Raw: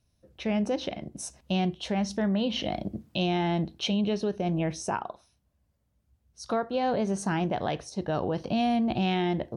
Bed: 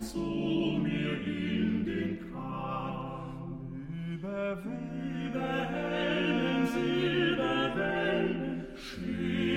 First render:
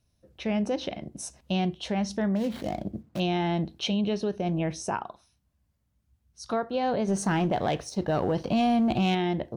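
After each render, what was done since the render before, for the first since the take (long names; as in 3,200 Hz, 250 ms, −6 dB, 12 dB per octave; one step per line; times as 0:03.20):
0:02.35–0:03.20: running median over 15 samples
0:05.04–0:06.53: parametric band 520 Hz −6.5 dB 1 octave
0:07.08–0:09.15: leveller curve on the samples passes 1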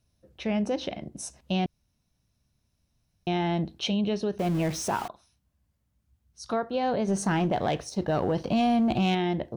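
0:01.66–0:03.27: fill with room tone
0:04.39–0:05.08: converter with a step at zero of −34 dBFS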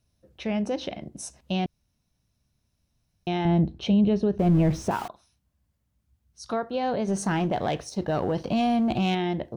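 0:03.45–0:04.91: spectral tilt −3 dB per octave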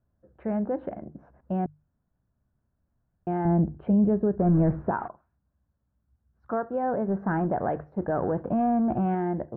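Chebyshev low-pass filter 1,600 Hz, order 4
mains-hum notches 50/100/150 Hz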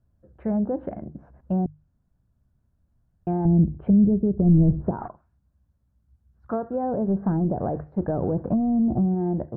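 treble cut that deepens with the level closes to 390 Hz, closed at −21 dBFS
low-shelf EQ 200 Hz +9.5 dB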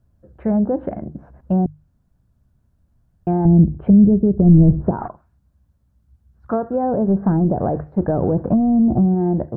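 level +6.5 dB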